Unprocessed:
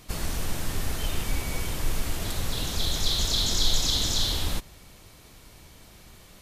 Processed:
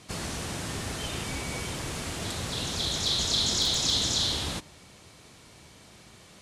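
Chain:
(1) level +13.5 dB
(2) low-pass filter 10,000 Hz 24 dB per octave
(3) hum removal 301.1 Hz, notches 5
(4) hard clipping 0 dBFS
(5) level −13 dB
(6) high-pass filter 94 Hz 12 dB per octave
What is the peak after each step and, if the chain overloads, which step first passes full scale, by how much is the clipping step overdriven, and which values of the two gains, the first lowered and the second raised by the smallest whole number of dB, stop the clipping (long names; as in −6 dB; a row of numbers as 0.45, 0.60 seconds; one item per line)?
+4.0, +3.5, +3.5, 0.0, −13.0, −13.0 dBFS
step 1, 3.5 dB
step 1 +9.5 dB, step 5 −9 dB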